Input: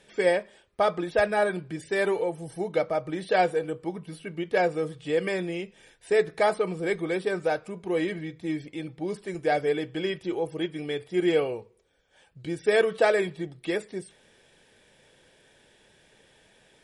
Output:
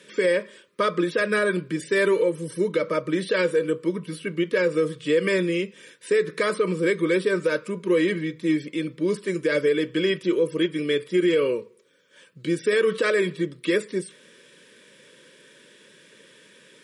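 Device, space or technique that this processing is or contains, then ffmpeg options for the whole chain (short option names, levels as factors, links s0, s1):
PA system with an anti-feedback notch: -af "highpass=f=160:w=0.5412,highpass=f=160:w=1.3066,asuperstop=centerf=750:order=8:qfactor=2.1,alimiter=limit=0.0944:level=0:latency=1:release=93,volume=2.51"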